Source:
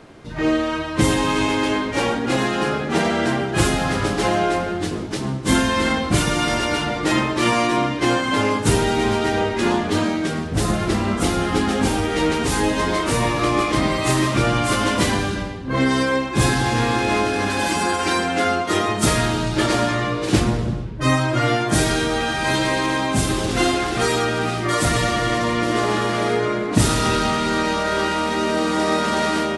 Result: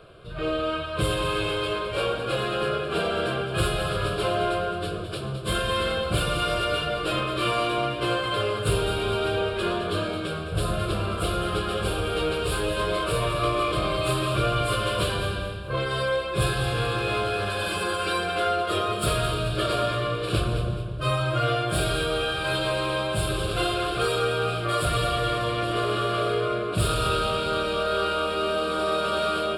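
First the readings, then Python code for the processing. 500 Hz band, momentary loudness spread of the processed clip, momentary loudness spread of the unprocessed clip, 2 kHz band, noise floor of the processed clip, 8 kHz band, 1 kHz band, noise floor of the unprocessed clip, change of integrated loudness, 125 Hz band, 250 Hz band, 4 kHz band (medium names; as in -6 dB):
-3.5 dB, 3 LU, 3 LU, -6.5 dB, -31 dBFS, -10.5 dB, -5.5 dB, -27 dBFS, -6.0 dB, -4.5 dB, -12.0 dB, -3.5 dB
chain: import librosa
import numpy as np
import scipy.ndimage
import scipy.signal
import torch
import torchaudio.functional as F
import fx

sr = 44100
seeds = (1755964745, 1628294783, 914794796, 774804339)

p1 = 10.0 ** (-19.0 / 20.0) * np.tanh(x / 10.0 ** (-19.0 / 20.0))
p2 = x + (p1 * librosa.db_to_amplitude(-4.0))
p3 = fx.fixed_phaser(p2, sr, hz=1300.0, stages=8)
p4 = fx.echo_feedback(p3, sr, ms=213, feedback_pct=37, wet_db=-10)
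y = p4 * librosa.db_to_amplitude(-5.5)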